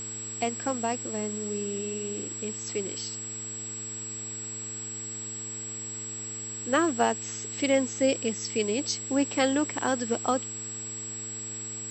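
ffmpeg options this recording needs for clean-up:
-af "bandreject=f=109.6:t=h:w=4,bandreject=f=219.2:t=h:w=4,bandreject=f=328.8:t=h:w=4,bandreject=f=438.4:t=h:w=4,bandreject=f=7.7k:w=30,afwtdn=0.005"

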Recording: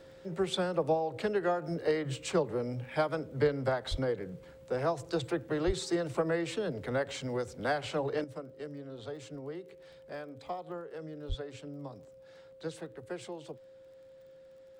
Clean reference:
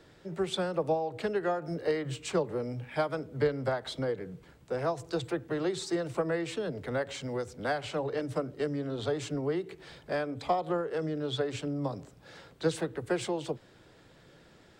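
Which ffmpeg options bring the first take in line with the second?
-filter_complex "[0:a]adeclick=t=4,bandreject=f=530:w=30,asplit=3[a][b][c];[a]afade=t=out:st=3.9:d=0.02[d];[b]highpass=f=140:w=0.5412,highpass=f=140:w=1.3066,afade=t=in:st=3.9:d=0.02,afade=t=out:st=4.02:d=0.02[e];[c]afade=t=in:st=4.02:d=0.02[f];[d][e][f]amix=inputs=3:normalize=0,asplit=3[g][h][i];[g]afade=t=out:st=5.66:d=0.02[j];[h]highpass=f=140:w=0.5412,highpass=f=140:w=1.3066,afade=t=in:st=5.66:d=0.02,afade=t=out:st=5.78:d=0.02[k];[i]afade=t=in:st=5.78:d=0.02[l];[j][k][l]amix=inputs=3:normalize=0,asplit=3[m][n][o];[m]afade=t=out:st=11.28:d=0.02[p];[n]highpass=f=140:w=0.5412,highpass=f=140:w=1.3066,afade=t=in:st=11.28:d=0.02,afade=t=out:st=11.4:d=0.02[q];[o]afade=t=in:st=11.4:d=0.02[r];[p][q][r]amix=inputs=3:normalize=0,asetnsamples=n=441:p=0,asendcmd='8.24 volume volume 10.5dB',volume=0dB"

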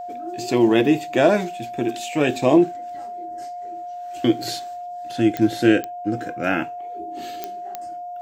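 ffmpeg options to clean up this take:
-af "adeclick=t=4,bandreject=f=710:w=30"

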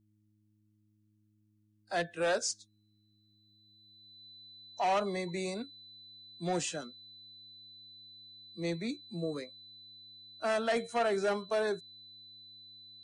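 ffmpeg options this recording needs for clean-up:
-af "bandreject=f=105.3:t=h:w=4,bandreject=f=210.6:t=h:w=4,bandreject=f=315.9:t=h:w=4,bandreject=f=4k:w=30"

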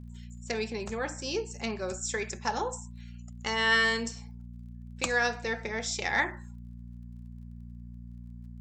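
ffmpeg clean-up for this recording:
-af "adeclick=t=4,bandreject=f=59.2:t=h:w=4,bandreject=f=118.4:t=h:w=4,bandreject=f=177.6:t=h:w=4,bandreject=f=236.8:t=h:w=4"

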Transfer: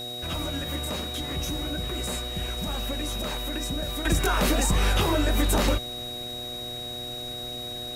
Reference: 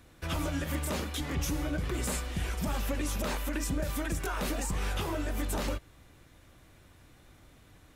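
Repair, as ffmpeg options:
-af "bandreject=f=121.8:t=h:w=4,bandreject=f=243.6:t=h:w=4,bandreject=f=365.4:t=h:w=4,bandreject=f=487.2:t=h:w=4,bandreject=f=609:t=h:w=4,bandreject=f=730.8:t=h:w=4,bandreject=f=3.8k:w=30,afwtdn=0.0045,asetnsamples=n=441:p=0,asendcmd='4.05 volume volume -9.5dB',volume=0dB"

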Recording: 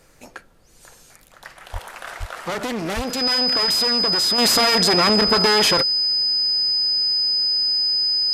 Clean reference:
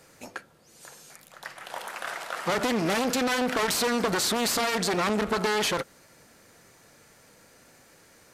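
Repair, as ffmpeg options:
-filter_complex "[0:a]bandreject=f=5k:w=30,asplit=3[a][b][c];[a]afade=t=out:st=1.72:d=0.02[d];[b]highpass=f=140:w=0.5412,highpass=f=140:w=1.3066,afade=t=in:st=1.72:d=0.02,afade=t=out:st=1.84:d=0.02[e];[c]afade=t=in:st=1.84:d=0.02[f];[d][e][f]amix=inputs=3:normalize=0,asplit=3[g][h][i];[g]afade=t=out:st=2.19:d=0.02[j];[h]highpass=f=140:w=0.5412,highpass=f=140:w=1.3066,afade=t=in:st=2.19:d=0.02,afade=t=out:st=2.31:d=0.02[k];[i]afade=t=in:st=2.31:d=0.02[l];[j][k][l]amix=inputs=3:normalize=0,asplit=3[m][n][o];[m]afade=t=out:st=2.95:d=0.02[p];[n]highpass=f=140:w=0.5412,highpass=f=140:w=1.3066,afade=t=in:st=2.95:d=0.02,afade=t=out:st=3.07:d=0.02[q];[o]afade=t=in:st=3.07:d=0.02[r];[p][q][r]amix=inputs=3:normalize=0,agate=range=-21dB:threshold=-42dB,asetnsamples=n=441:p=0,asendcmd='4.38 volume volume -7.5dB',volume=0dB"

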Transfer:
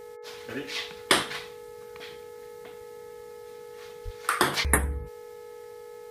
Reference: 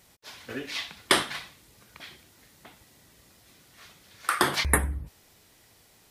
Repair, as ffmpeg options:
-filter_complex "[0:a]bandreject=f=428.8:t=h:w=4,bandreject=f=857.6:t=h:w=4,bandreject=f=1.2864k:t=h:w=4,bandreject=f=1.7152k:t=h:w=4,bandreject=f=2.144k:t=h:w=4,bandreject=f=480:w=30,asplit=3[a][b][c];[a]afade=t=out:st=4.04:d=0.02[d];[b]highpass=f=140:w=0.5412,highpass=f=140:w=1.3066,afade=t=in:st=4.04:d=0.02,afade=t=out:st=4.16:d=0.02[e];[c]afade=t=in:st=4.16:d=0.02[f];[d][e][f]amix=inputs=3:normalize=0"

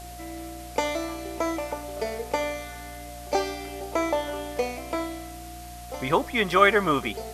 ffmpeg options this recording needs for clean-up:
-af "adeclick=t=4,bandreject=f=59.6:t=h:w=4,bandreject=f=119.2:t=h:w=4,bandreject=f=178.8:t=h:w=4,bandreject=f=238.4:t=h:w=4,bandreject=f=298:t=h:w=4,bandreject=f=710:w=30,afwtdn=0.005"

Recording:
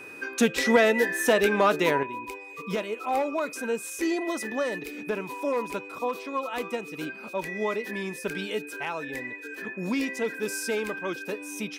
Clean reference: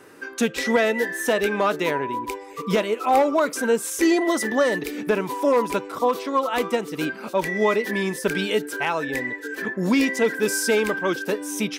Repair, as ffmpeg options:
-af "bandreject=f=2.5k:w=30,asetnsamples=n=441:p=0,asendcmd='2.03 volume volume 8.5dB',volume=0dB"

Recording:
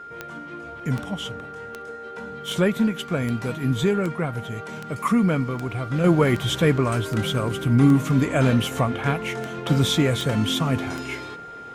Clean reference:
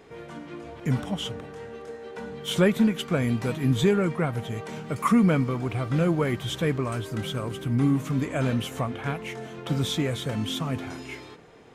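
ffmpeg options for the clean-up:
-af "adeclick=t=4,bandreject=f=1.4k:w=30,asetnsamples=n=441:p=0,asendcmd='6.04 volume volume -6.5dB',volume=0dB"

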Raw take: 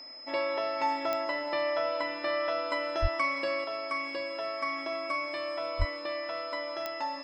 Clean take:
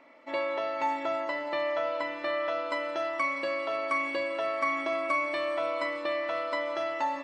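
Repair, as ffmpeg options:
-filter_complex "[0:a]adeclick=t=4,bandreject=f=5.1k:w=30,asplit=3[a][b][c];[a]afade=t=out:st=3.01:d=0.02[d];[b]highpass=f=140:w=0.5412,highpass=f=140:w=1.3066,afade=t=in:st=3.01:d=0.02,afade=t=out:st=3.13:d=0.02[e];[c]afade=t=in:st=3.13:d=0.02[f];[d][e][f]amix=inputs=3:normalize=0,asplit=3[g][h][i];[g]afade=t=out:st=5.78:d=0.02[j];[h]highpass=f=140:w=0.5412,highpass=f=140:w=1.3066,afade=t=in:st=5.78:d=0.02,afade=t=out:st=5.9:d=0.02[k];[i]afade=t=in:st=5.9:d=0.02[l];[j][k][l]amix=inputs=3:normalize=0,asetnsamples=n=441:p=0,asendcmd='3.64 volume volume 4.5dB',volume=0dB"

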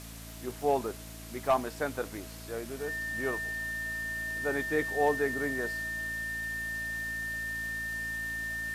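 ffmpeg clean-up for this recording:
-af "adeclick=t=4,bandreject=f=55.9:t=h:w=4,bandreject=f=111.8:t=h:w=4,bandreject=f=167.7:t=h:w=4,bandreject=f=223.6:t=h:w=4,bandreject=f=279.5:t=h:w=4,bandreject=f=1.8k:w=30,afwtdn=0.004"

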